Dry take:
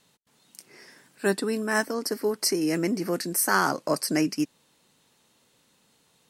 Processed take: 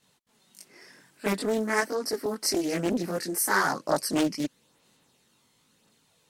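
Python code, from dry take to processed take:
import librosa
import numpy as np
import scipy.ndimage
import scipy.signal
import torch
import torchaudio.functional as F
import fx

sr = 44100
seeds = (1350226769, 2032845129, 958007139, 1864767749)

y = fx.chorus_voices(x, sr, voices=2, hz=0.51, base_ms=21, depth_ms=2.7, mix_pct=60)
y = fx.doppler_dist(y, sr, depth_ms=0.45)
y = y * librosa.db_to_amplitude(1.5)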